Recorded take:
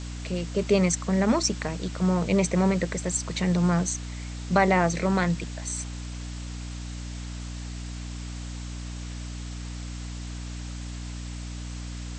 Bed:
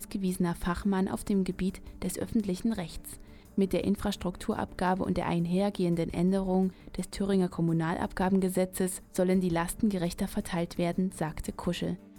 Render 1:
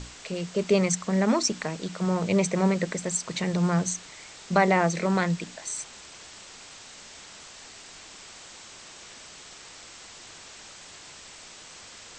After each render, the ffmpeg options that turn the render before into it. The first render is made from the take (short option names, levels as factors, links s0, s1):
-af "bandreject=f=60:t=h:w=6,bandreject=f=120:t=h:w=6,bandreject=f=180:t=h:w=6,bandreject=f=240:t=h:w=6,bandreject=f=300:t=h:w=6"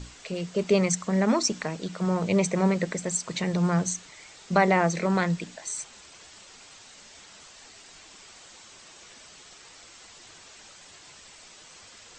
-af "afftdn=nr=6:nf=-47"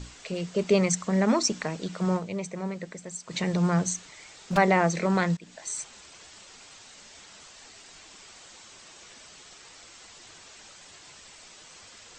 -filter_complex "[0:a]asplit=3[s0][s1][s2];[s0]afade=t=out:st=3.94:d=0.02[s3];[s1]aeval=exprs='0.0668*(abs(mod(val(0)/0.0668+3,4)-2)-1)':c=same,afade=t=in:st=3.94:d=0.02,afade=t=out:st=4.56:d=0.02[s4];[s2]afade=t=in:st=4.56:d=0.02[s5];[s3][s4][s5]amix=inputs=3:normalize=0,asplit=4[s6][s7][s8][s9];[s6]atrim=end=2.55,asetpts=PTS-STARTPTS,afade=t=out:st=2.16:d=0.39:c=exp:silence=0.316228[s10];[s7]atrim=start=2.55:end=2.95,asetpts=PTS-STARTPTS,volume=0.316[s11];[s8]atrim=start=2.95:end=5.37,asetpts=PTS-STARTPTS,afade=t=in:d=0.39:c=exp:silence=0.316228,afade=t=out:st=2.416:d=0.004:c=hsin:silence=0.0630957[s12];[s9]atrim=start=5.37,asetpts=PTS-STARTPTS,afade=t=in:d=0.41:c=qsin:silence=0.0630957[s13];[s10][s11][s12][s13]concat=n=4:v=0:a=1"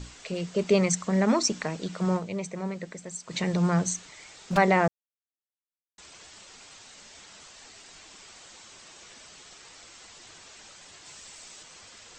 -filter_complex "[0:a]asettb=1/sr,asplit=3[s0][s1][s2];[s0]atrim=end=11.064[s3];[s1]atrim=start=11.06:end=11.63,asetpts=PTS-STARTPTS,afade=t=in:d=0.004:c=qsin,afade=t=out:st=0.566:d=0.004:c=qsin,highshelf=f=8200:g=11[s4];[s2]atrim=start=11.626[s5];[s3][s4]acrossfade=d=0.004:c1=hsin:c2=qsin[s6];[s6][s5]acrossfade=d=0.004:c1=qsin:c2=hsin,asplit=3[s7][s8][s9];[s7]atrim=end=4.88,asetpts=PTS-STARTPTS,afade=t=out:st=4.876:d=0.004:c=hsin[s10];[s8]atrim=start=4.88:end=5.98,asetpts=PTS-STARTPTS,volume=0[s11];[s9]atrim=start=5.98,asetpts=PTS-STARTPTS,afade=t=in:d=0.004:c=hsin[s12];[s10][s11][s12]concat=n=3:v=0:a=1"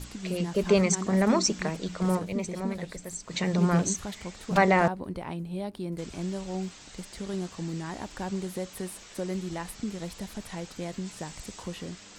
-filter_complex "[1:a]volume=0.473[s0];[0:a][s0]amix=inputs=2:normalize=0"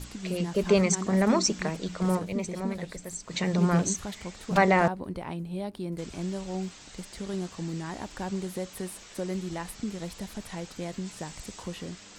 -af anull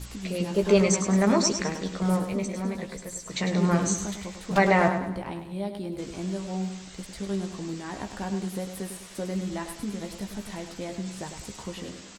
-filter_complex "[0:a]asplit=2[s0][s1];[s1]adelay=15,volume=0.473[s2];[s0][s2]amix=inputs=2:normalize=0,asplit=2[s3][s4];[s4]aecho=0:1:102|204|306|408|510:0.376|0.165|0.0728|0.032|0.0141[s5];[s3][s5]amix=inputs=2:normalize=0"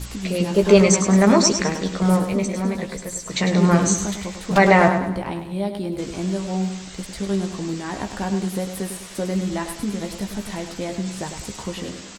-af "volume=2.24,alimiter=limit=0.891:level=0:latency=1"